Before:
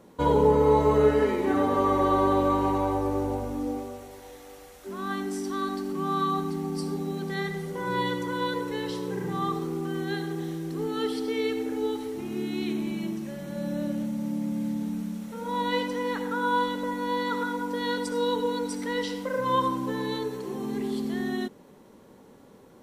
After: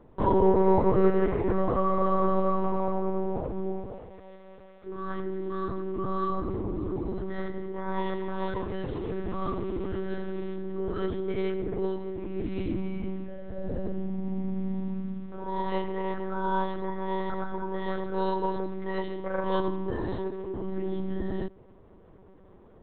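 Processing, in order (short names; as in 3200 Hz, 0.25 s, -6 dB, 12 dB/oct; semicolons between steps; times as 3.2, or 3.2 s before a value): 7.98–10.55 delta modulation 32 kbps, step -34.5 dBFS; LPF 1200 Hz 6 dB/oct; monotone LPC vocoder at 8 kHz 190 Hz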